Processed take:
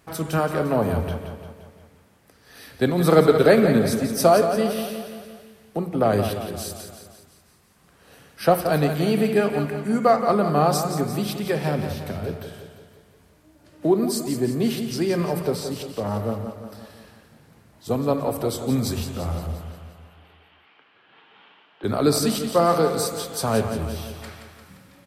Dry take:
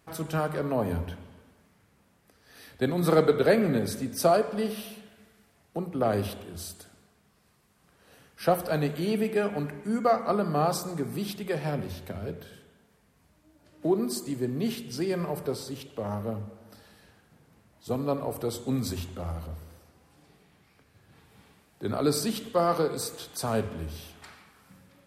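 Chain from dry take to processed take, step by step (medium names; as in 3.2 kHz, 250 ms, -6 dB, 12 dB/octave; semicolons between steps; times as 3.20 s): 19.61–21.84 s: cabinet simulation 440–3400 Hz, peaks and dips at 540 Hz -4 dB, 950 Hz +3 dB, 1.4 kHz +4 dB, 3 kHz +10 dB; feedback delay 174 ms, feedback 55%, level -9 dB; trim +6 dB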